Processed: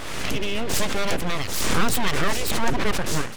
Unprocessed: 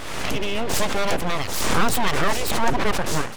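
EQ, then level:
dynamic equaliser 820 Hz, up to −5 dB, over −38 dBFS, Q 1
0.0 dB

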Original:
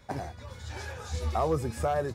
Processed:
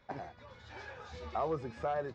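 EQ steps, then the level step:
Gaussian smoothing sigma 2 samples
parametric band 78 Hz −9 dB 1 octave
low-shelf EQ 460 Hz −5 dB
−4.0 dB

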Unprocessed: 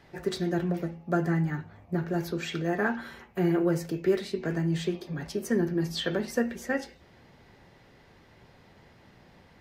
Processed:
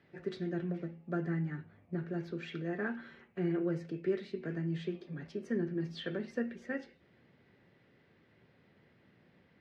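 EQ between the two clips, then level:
band-pass filter 120–2,800 Hz
parametric band 870 Hz −9.5 dB 1 octave
−6.5 dB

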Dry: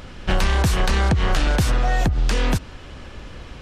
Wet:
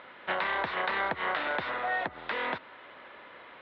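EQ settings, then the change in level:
high-frequency loss of the air 340 metres
loudspeaker in its box 450–4,100 Hz, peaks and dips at 610 Hz +4 dB, 980 Hz +7 dB, 1,400 Hz +5 dB, 2,000 Hz +10 dB, 3,700 Hz +8 dB
−7.0 dB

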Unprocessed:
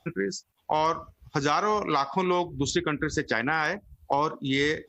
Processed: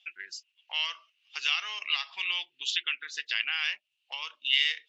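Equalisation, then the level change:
high-pass with resonance 2,800 Hz, resonance Q 9.5
low-pass filter 5,100 Hz 12 dB per octave
−2.5 dB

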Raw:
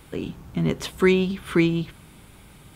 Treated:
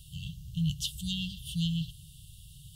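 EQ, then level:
linear-phase brick-wall band-stop 170–2,700 Hz
0.0 dB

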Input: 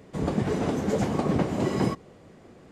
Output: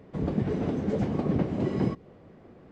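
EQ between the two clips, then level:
notch filter 6,900 Hz, Q 27
dynamic equaliser 1,000 Hz, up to −6 dB, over −41 dBFS, Q 0.78
head-to-tape spacing loss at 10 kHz 23 dB
0.0 dB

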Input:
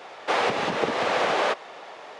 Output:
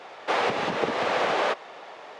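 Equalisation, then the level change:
high-shelf EQ 7,400 Hz −6 dB
−1.0 dB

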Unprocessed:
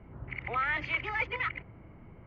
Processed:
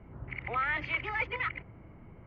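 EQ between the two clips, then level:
high-frequency loss of the air 70 metres
0.0 dB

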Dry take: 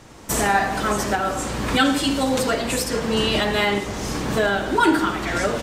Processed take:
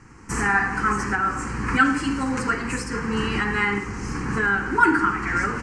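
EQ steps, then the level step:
Bessel low-pass filter 6,000 Hz, order 8
dynamic equaliser 1,400 Hz, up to +4 dB, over −32 dBFS, Q 1
phaser with its sweep stopped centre 1,500 Hz, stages 4
0.0 dB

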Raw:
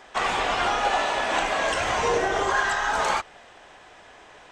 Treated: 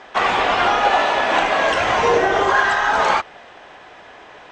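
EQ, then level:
high-frequency loss of the air 120 metres
low-shelf EQ 73 Hz −10.5 dB
+8.0 dB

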